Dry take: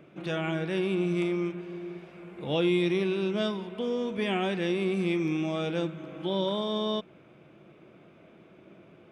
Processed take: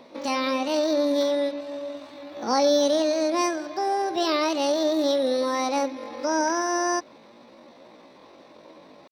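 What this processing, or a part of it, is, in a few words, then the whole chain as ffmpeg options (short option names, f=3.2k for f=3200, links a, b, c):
chipmunk voice: -af "asetrate=72056,aresample=44100,atempo=0.612027,volume=5dB"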